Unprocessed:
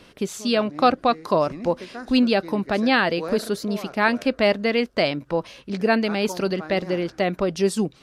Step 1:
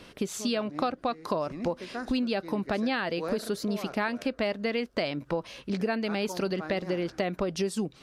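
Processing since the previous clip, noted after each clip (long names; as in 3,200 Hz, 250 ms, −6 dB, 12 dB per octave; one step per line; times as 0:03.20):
downward compressor 6 to 1, threshold −26 dBFS, peak gain reduction 14 dB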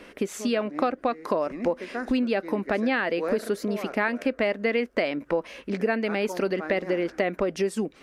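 octave-band graphic EQ 125/250/500/2,000/4,000 Hz −11/+5/+5/+8/−6 dB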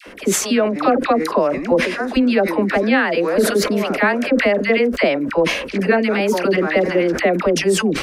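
all-pass dispersion lows, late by 67 ms, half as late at 820 Hz
level that may fall only so fast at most 64 dB per second
level +8.5 dB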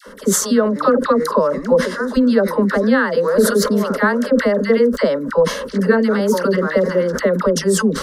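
phaser with its sweep stopped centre 490 Hz, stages 8
level +3.5 dB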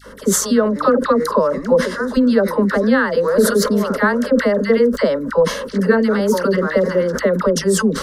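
mains hum 50 Hz, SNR 33 dB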